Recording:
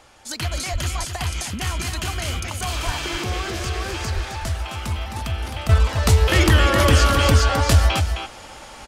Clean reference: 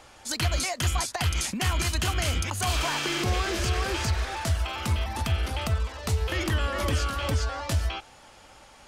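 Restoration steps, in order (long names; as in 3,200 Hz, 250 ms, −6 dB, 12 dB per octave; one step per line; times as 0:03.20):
0:00.72–0:00.84: high-pass filter 140 Hz 24 dB per octave
0:02.85–0:02.97: high-pass filter 140 Hz 24 dB per octave
0:04.14–0:04.26: high-pass filter 140 Hz 24 dB per octave
echo removal 262 ms −7 dB
level 0 dB, from 0:05.69 −11 dB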